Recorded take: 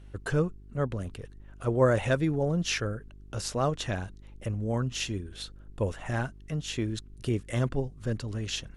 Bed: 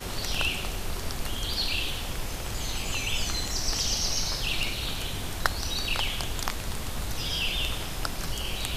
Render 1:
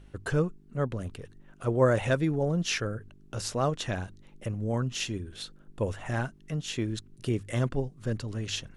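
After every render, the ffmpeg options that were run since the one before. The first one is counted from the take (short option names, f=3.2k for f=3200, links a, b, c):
-af "bandreject=f=50:t=h:w=4,bandreject=f=100:t=h:w=4"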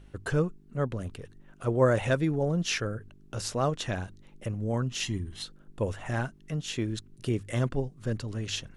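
-filter_complex "[0:a]asettb=1/sr,asplit=3[a][b][c];[a]atrim=end=5.034[d];[b]atrim=start=5.03:end=5.44,asetpts=PTS-STARTPTS,afade=t=in:d=0.004:c=qsin,afade=t=out:st=0.406:d=0.004:c=qsin,aecho=1:1:1:0.65,atrim=end_sample=18081[e];[c]atrim=start=5.436[f];[d][e]acrossfade=d=0.004:c1=hsin:c2=qsin[g];[g][f]acrossfade=d=0.004:c1=qsin:c2=hsin"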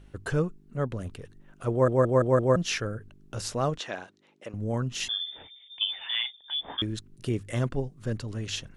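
-filter_complex "[0:a]asettb=1/sr,asplit=3[a][b][c];[a]atrim=end=3.784[d];[b]atrim=start=3.78:end=4.54,asetpts=PTS-STARTPTS,afade=t=in:d=0.004:c=qsin,afade=t=out:st=0.756:d=0.004:c=qsin,highpass=360,lowpass=6.1k[e];[c]atrim=start=4.536[f];[d][e]acrossfade=d=0.004:c1=hsin:c2=qsin[g];[g][f]acrossfade=d=0.004:c1=qsin:c2=hsin,asettb=1/sr,asplit=3[h][i][j];[h]atrim=end=5.084[k];[i]atrim=start=5.08:end=6.82,asetpts=PTS-STARTPTS,afade=t=in:d=0.004:c=qsin,afade=t=out:st=1.736:d=0.004:c=qsin,lowpass=f=3.1k:t=q:w=0.5098,lowpass=f=3.1k:t=q:w=0.6013,lowpass=f=3.1k:t=q:w=0.9,lowpass=f=3.1k:t=q:w=2.563,afreqshift=-3600[l];[j]atrim=start=6.816[m];[k][l]acrossfade=d=0.004:c1=hsin:c2=qsin[n];[n][m]acrossfade=d=0.004:c1=qsin:c2=hsin,asplit=6[o][p][q][r][s][t];[o]atrim=end=1.882[u];[p]atrim=start=1.708:end=1.882[v];[q]atrim=start=1.708:end=1.882[w];[r]atrim=start=1.708:end=1.882[x];[s]atrim=start=1.708:end=1.882[y];[t]atrim=start=2.558[z];[u][v]acrossfade=d=0.004:c1=hsin:c2=hsin[aa];[aa][w]acrossfade=d=0.004:c1=hsin:c2=hsin[ab];[ab][x]acrossfade=d=0.004:c1=hsin:c2=hsin[ac];[ac][y]acrossfade=d=0.004:c1=hsin:c2=hsin[ad];[ad][z]acrossfade=d=0.004:c1=hsin:c2=hsin"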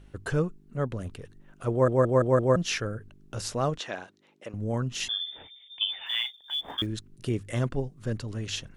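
-filter_complex "[0:a]asplit=3[a][b][c];[a]afade=t=out:st=6.05:d=0.02[d];[b]acrusher=bits=7:mode=log:mix=0:aa=0.000001,afade=t=in:st=6.05:d=0.02,afade=t=out:st=6.85:d=0.02[e];[c]afade=t=in:st=6.85:d=0.02[f];[d][e][f]amix=inputs=3:normalize=0"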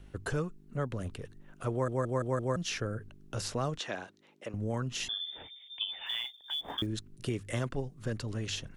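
-filter_complex "[0:a]acrossover=split=330|940|4300[a][b][c][d];[a]acompressor=threshold=-33dB:ratio=4[e];[b]acompressor=threshold=-37dB:ratio=4[f];[c]acompressor=threshold=-38dB:ratio=4[g];[d]acompressor=threshold=-40dB:ratio=4[h];[e][f][g][h]amix=inputs=4:normalize=0"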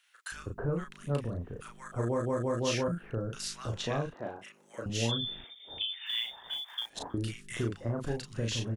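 -filter_complex "[0:a]asplit=2[a][b];[b]adelay=35,volume=-4dB[c];[a][c]amix=inputs=2:normalize=0,acrossover=split=1300[d][e];[d]adelay=320[f];[f][e]amix=inputs=2:normalize=0"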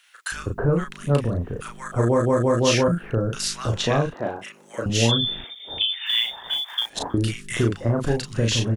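-af "volume=11.5dB"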